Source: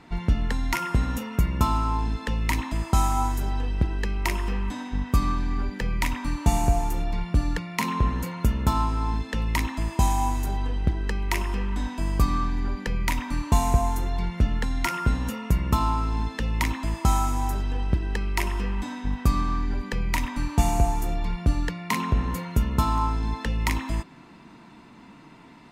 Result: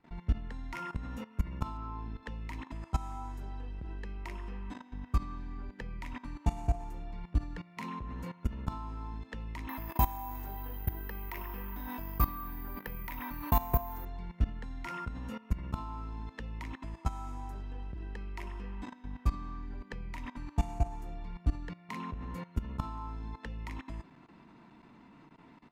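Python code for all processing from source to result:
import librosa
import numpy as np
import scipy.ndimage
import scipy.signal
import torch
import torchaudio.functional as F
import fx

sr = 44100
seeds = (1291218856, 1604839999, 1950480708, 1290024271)

y = fx.chain(x, sr, fx.air_absorb(metres=110.0),
    fx.room_flutter(wall_m=7.7, rt60_s=0.22), at=(1.77, 2.23))
y = fx.chain(y, sr, fx.peak_eq(hz=1200.0, db=6.5, octaves=2.8),
    fx.resample_bad(factor=3, down='filtered', up='zero_stuff'), at=(9.69, 14.05))
y = fx.lowpass(y, sr, hz=2500.0, slope=6)
y = fx.level_steps(y, sr, step_db=17)
y = y * librosa.db_to_amplitude(-5.5)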